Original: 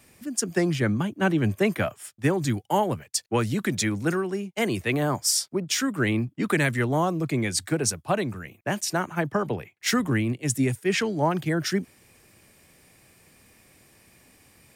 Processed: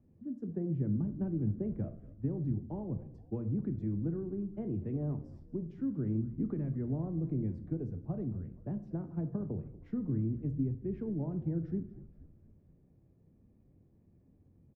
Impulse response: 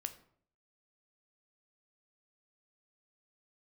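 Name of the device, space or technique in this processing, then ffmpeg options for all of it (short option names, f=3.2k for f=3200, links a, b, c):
television next door: -filter_complex "[0:a]acompressor=threshold=-25dB:ratio=6,lowpass=270[a];[1:a]atrim=start_sample=2205[b];[a][b]afir=irnorm=-1:irlink=0,asplit=6[c][d][e][f][g][h];[d]adelay=237,afreqshift=-59,volume=-18dB[i];[e]adelay=474,afreqshift=-118,volume=-22.4dB[j];[f]adelay=711,afreqshift=-177,volume=-26.9dB[k];[g]adelay=948,afreqshift=-236,volume=-31.3dB[l];[h]adelay=1185,afreqshift=-295,volume=-35.7dB[m];[c][i][j][k][l][m]amix=inputs=6:normalize=0"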